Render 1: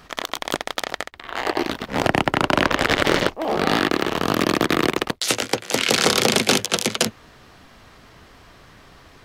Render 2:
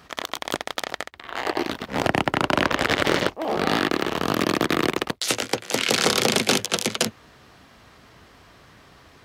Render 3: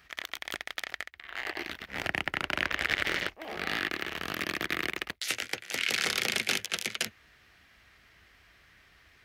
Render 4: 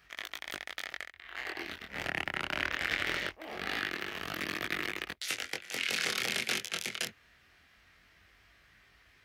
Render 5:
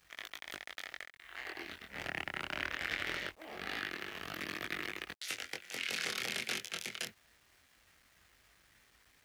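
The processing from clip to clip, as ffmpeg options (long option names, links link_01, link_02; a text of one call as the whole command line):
ffmpeg -i in.wav -af "highpass=52,volume=-2.5dB" out.wav
ffmpeg -i in.wav -af "equalizer=frequency=125:width_type=o:width=1:gain=-9,equalizer=frequency=250:width_type=o:width=1:gain=-9,equalizer=frequency=500:width_type=o:width=1:gain=-8,equalizer=frequency=1000:width_type=o:width=1:gain=-10,equalizer=frequency=2000:width_type=o:width=1:gain=6,equalizer=frequency=4000:width_type=o:width=1:gain=-3,equalizer=frequency=8000:width_type=o:width=1:gain=-5,volume=-5.5dB" out.wav
ffmpeg -i in.wav -af "flanger=delay=19.5:depth=5.3:speed=0.22" out.wav
ffmpeg -i in.wav -af "acrusher=bits=9:mix=0:aa=0.000001,volume=-5dB" out.wav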